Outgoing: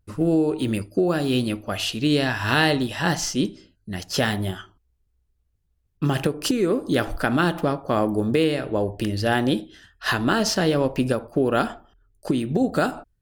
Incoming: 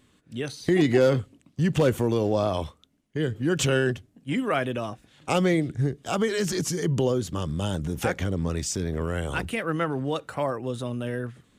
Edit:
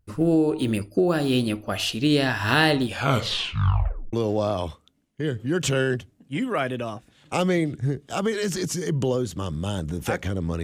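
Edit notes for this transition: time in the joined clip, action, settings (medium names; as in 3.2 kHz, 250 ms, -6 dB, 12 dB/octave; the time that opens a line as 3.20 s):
outgoing
2.83 s: tape stop 1.30 s
4.13 s: go over to incoming from 2.09 s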